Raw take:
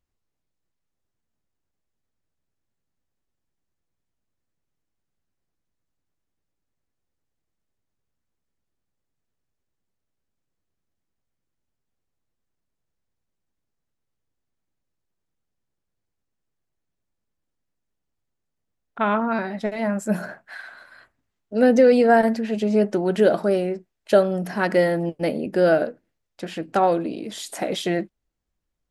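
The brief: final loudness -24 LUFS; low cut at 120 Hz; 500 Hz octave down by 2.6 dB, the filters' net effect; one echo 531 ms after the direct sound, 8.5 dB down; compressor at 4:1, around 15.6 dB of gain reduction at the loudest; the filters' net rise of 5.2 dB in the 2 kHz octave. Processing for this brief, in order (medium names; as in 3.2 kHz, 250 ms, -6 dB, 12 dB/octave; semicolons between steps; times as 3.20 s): high-pass 120 Hz; peaking EQ 500 Hz -3.5 dB; peaking EQ 2 kHz +7 dB; compression 4:1, threshold -32 dBFS; delay 531 ms -8.5 dB; trim +10.5 dB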